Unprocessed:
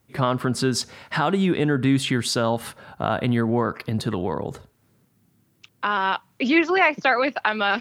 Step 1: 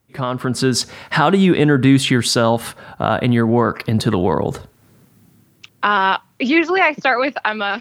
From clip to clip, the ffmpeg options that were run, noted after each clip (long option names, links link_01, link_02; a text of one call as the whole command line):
ffmpeg -i in.wav -af "dynaudnorm=framelen=130:gausssize=7:maxgain=13.5dB,volume=-1dB" out.wav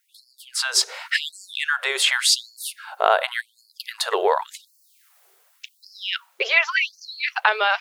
ffmpeg -i in.wav -af "equalizer=frequency=170:width_type=o:width=1.3:gain=-9,afftfilt=real='re*gte(b*sr/1024,360*pow(4300/360,0.5+0.5*sin(2*PI*0.89*pts/sr)))':imag='im*gte(b*sr/1024,360*pow(4300/360,0.5+0.5*sin(2*PI*0.89*pts/sr)))':win_size=1024:overlap=0.75,volume=1.5dB" out.wav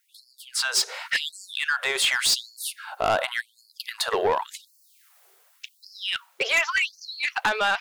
ffmpeg -i in.wav -af "asoftclip=type=tanh:threshold=-15.5dB" out.wav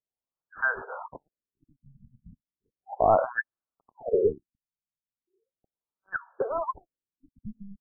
ffmpeg -i in.wav -af "afftfilt=real='re*lt(b*sr/1024,220*pow(1800/220,0.5+0.5*sin(2*PI*0.36*pts/sr)))':imag='im*lt(b*sr/1024,220*pow(1800/220,0.5+0.5*sin(2*PI*0.36*pts/sr)))':win_size=1024:overlap=0.75,volume=3.5dB" out.wav